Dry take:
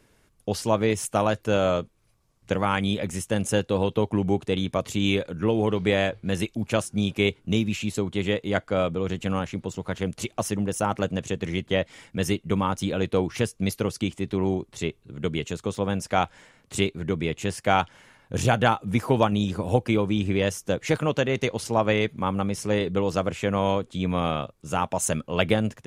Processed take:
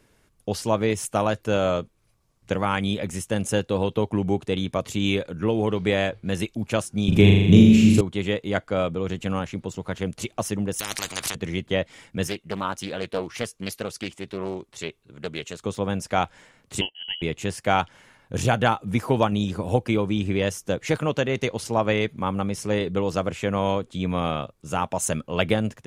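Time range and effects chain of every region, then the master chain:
7.08–8.01 s: bass shelf 380 Hz +11.5 dB + flutter echo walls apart 7 m, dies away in 1 s + three bands compressed up and down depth 40%
10.79–11.35 s: upward compressor, threshold -25 dBFS + spectrum-flattening compressor 10:1
12.27–15.62 s: bass shelf 370 Hz -9.5 dB + loudspeaker Doppler distortion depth 0.4 ms
16.81–17.22 s: static phaser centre 1.9 kHz, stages 6 + frequency inversion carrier 3.1 kHz + upward expansion, over -47 dBFS
whole clip: none

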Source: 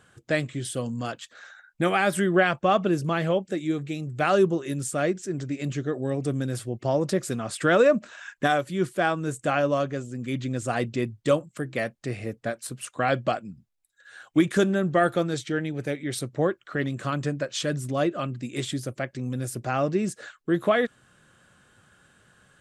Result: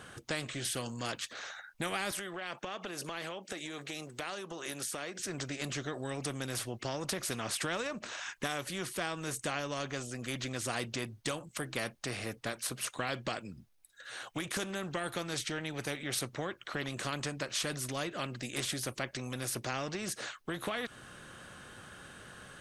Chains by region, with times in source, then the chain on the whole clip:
2.11–5.19 s: high-pass 350 Hz + compression, threshold -34 dBFS
whole clip: band-stop 7.4 kHz, Q 8; compression, threshold -24 dBFS; spectrum-flattening compressor 2:1; trim -5.5 dB

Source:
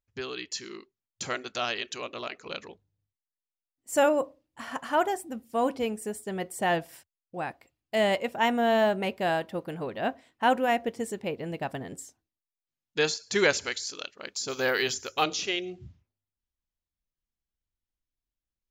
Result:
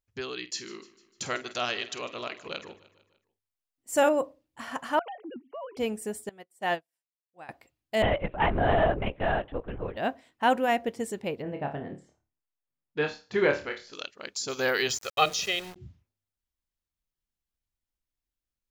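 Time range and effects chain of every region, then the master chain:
0.38–4.09 s: doubling 49 ms -13 dB + feedback delay 150 ms, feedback 52%, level -18.5 dB
4.99–5.77 s: formants replaced by sine waves + compression 5:1, threshold -37 dBFS
6.29–7.49 s: bass shelf 300 Hz -8 dB + upward expansion 2.5:1, over -49 dBFS
8.02–9.97 s: low-pass 2.9 kHz + LPC vocoder at 8 kHz whisper
11.42–13.93 s: low-pass 2.7 kHz + treble shelf 2.1 kHz -8 dB + flutter echo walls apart 4.7 m, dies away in 0.29 s
14.90–15.76 s: comb 1.6 ms, depth 69% + small samples zeroed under -39.5 dBFS
whole clip: none

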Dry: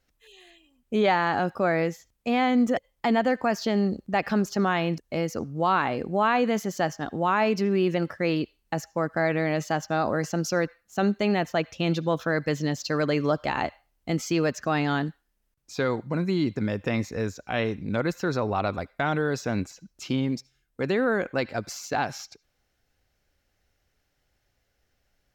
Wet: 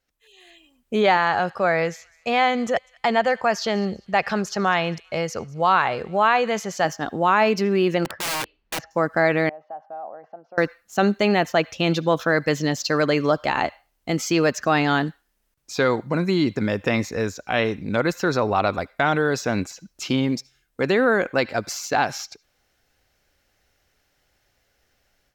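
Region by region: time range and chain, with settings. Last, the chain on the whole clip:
1.17–6.85 s: low-pass 9.4 kHz + peaking EQ 280 Hz -15 dB 0.47 oct + feedback echo behind a high-pass 199 ms, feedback 34%, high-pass 1.9 kHz, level -22 dB
8.05–8.91 s: distance through air 270 m + integer overflow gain 28 dB
9.49–10.58 s: compression 10:1, threshold -28 dBFS + band-pass filter 730 Hz, Q 5.6 + distance through air 310 m
whole clip: bass shelf 280 Hz -6.5 dB; level rider gain up to 11.5 dB; trim -3.5 dB

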